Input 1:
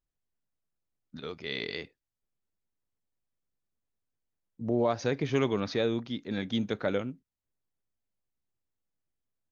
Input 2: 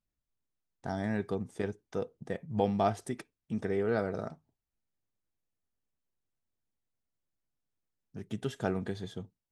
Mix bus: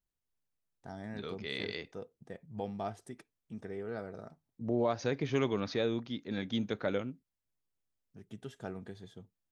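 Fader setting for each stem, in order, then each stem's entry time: -3.5, -10.0 dB; 0.00, 0.00 s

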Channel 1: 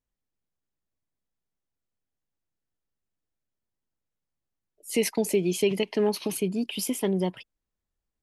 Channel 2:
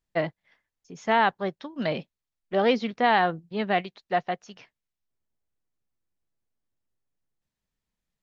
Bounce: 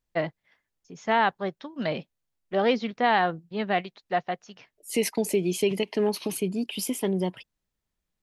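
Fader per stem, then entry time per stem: -0.5, -1.0 dB; 0.00, 0.00 s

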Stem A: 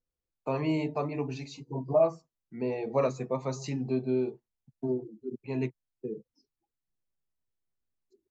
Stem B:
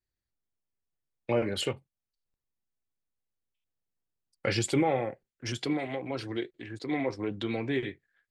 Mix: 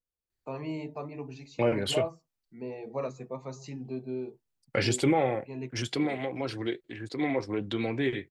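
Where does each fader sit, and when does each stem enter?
-7.0, +1.5 dB; 0.00, 0.30 s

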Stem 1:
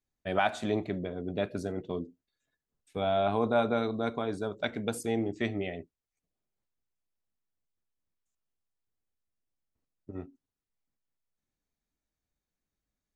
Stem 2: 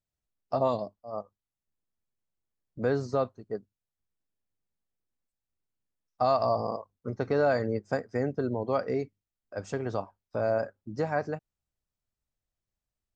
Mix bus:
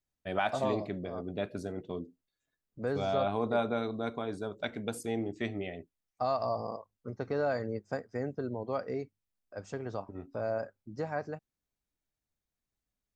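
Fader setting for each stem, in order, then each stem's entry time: -3.5, -6.0 dB; 0.00, 0.00 s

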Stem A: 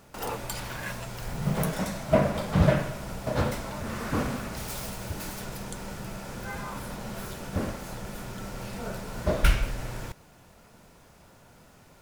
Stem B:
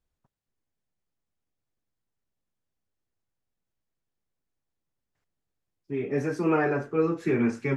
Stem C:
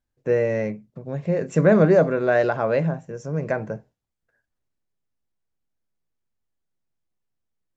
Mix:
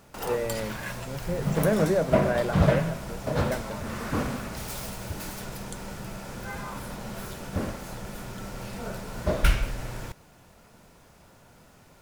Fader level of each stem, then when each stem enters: 0.0 dB, off, -8.5 dB; 0.00 s, off, 0.00 s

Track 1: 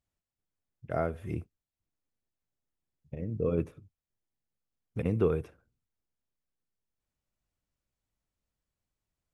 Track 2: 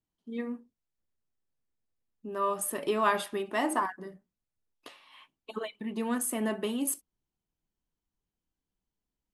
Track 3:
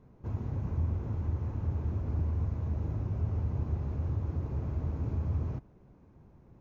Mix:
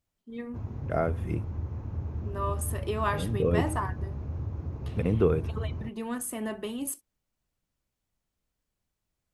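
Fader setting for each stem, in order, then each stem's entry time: +3.0, -3.0, -2.0 dB; 0.00, 0.00, 0.30 s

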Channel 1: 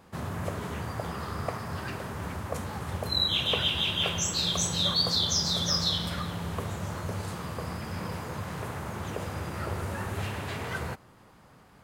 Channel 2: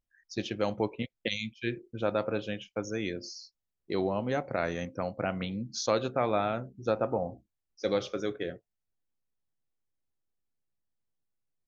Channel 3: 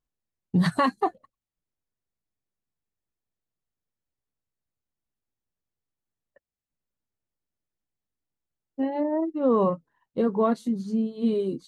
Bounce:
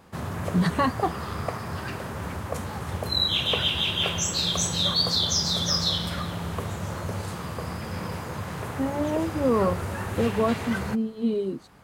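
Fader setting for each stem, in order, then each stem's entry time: +2.5, -18.0, -1.0 dB; 0.00, 0.00, 0.00 s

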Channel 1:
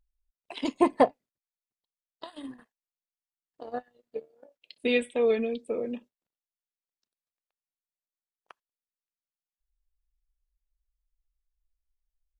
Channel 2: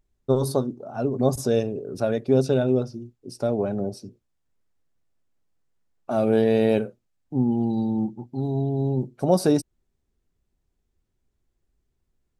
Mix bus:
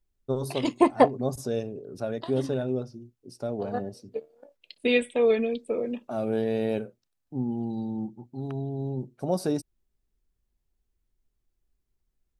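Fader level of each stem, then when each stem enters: +2.5, -7.5 dB; 0.00, 0.00 s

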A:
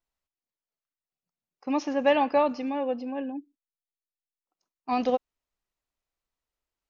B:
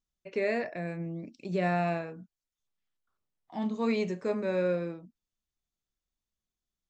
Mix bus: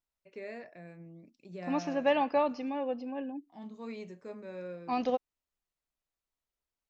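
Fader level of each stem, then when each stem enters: -5.0, -13.5 dB; 0.00, 0.00 s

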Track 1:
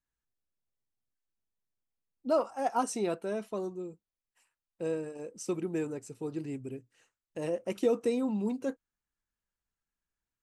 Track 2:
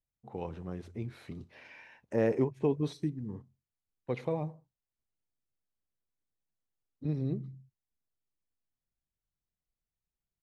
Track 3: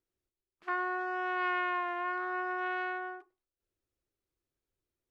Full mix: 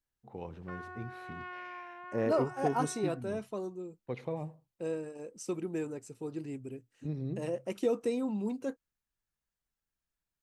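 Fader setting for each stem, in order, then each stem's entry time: -2.5, -4.0, -12.5 dB; 0.00, 0.00, 0.00 s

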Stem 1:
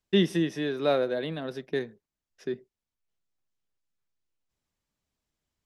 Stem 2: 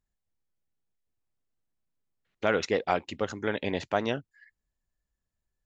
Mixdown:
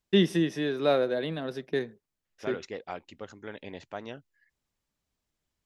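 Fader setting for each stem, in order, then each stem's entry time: +0.5, -11.5 dB; 0.00, 0.00 s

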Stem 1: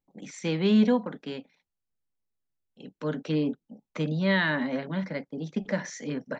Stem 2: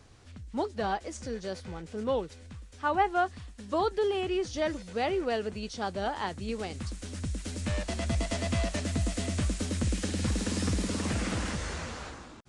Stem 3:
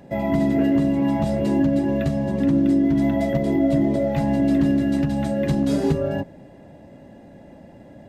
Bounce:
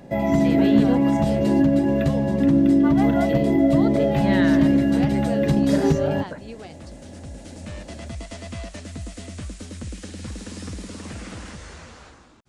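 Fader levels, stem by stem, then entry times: -2.5, -4.5, +1.5 dB; 0.00, 0.00, 0.00 s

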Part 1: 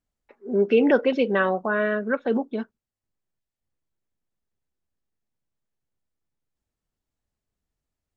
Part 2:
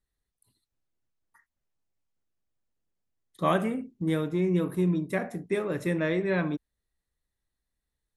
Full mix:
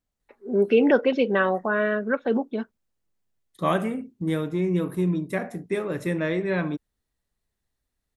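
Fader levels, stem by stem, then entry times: 0.0, +1.5 dB; 0.00, 0.20 s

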